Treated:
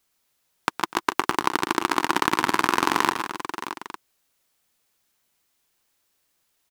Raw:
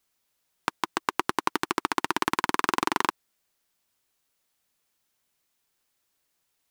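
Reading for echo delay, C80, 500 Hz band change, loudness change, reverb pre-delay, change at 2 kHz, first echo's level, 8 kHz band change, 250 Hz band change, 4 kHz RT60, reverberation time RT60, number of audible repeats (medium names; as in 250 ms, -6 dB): 115 ms, no reverb, +4.5 dB, +4.0 dB, no reverb, +4.5 dB, -10.0 dB, +4.5 dB, +5.0 dB, no reverb, no reverb, 5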